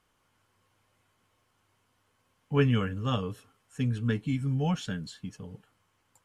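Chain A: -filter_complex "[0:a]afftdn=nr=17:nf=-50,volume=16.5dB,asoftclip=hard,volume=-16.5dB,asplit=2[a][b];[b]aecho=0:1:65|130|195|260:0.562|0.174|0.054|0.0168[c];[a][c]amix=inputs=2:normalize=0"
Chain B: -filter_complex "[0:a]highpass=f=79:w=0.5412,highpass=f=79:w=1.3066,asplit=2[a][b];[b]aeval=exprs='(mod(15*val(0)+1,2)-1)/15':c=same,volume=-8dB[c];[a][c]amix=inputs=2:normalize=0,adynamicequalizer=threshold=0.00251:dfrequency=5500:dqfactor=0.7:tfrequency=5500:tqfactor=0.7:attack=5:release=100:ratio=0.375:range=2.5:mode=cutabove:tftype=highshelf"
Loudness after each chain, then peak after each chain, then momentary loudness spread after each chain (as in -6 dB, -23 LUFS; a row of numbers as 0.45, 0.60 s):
-29.0, -29.5 LUFS; -13.5, -11.5 dBFS; 18, 17 LU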